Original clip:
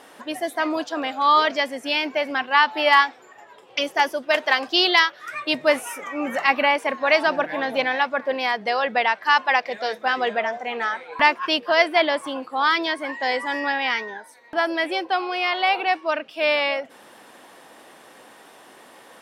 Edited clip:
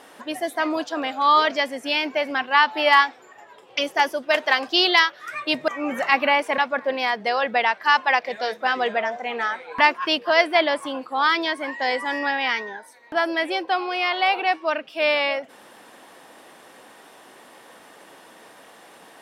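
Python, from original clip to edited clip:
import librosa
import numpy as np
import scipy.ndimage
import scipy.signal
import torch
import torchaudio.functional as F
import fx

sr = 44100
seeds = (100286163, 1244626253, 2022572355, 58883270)

y = fx.edit(x, sr, fx.cut(start_s=5.68, length_s=0.36),
    fx.cut(start_s=6.94, length_s=1.05), tone=tone)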